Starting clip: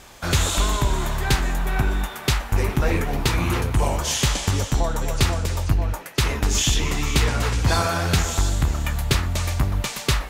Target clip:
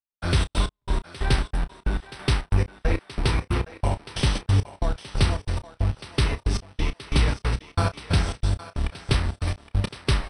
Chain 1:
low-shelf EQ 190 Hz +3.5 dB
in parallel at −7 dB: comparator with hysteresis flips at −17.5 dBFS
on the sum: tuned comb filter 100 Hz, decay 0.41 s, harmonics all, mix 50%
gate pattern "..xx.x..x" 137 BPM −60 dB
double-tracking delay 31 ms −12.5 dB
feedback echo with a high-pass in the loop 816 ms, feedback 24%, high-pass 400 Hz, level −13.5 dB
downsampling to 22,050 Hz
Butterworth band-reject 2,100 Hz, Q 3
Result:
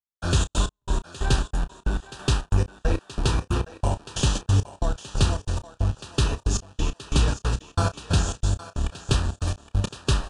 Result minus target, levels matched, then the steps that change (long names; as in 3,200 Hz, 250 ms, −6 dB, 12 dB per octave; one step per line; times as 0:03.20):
8,000 Hz band +6.5 dB
change: Butterworth band-reject 6,900 Hz, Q 3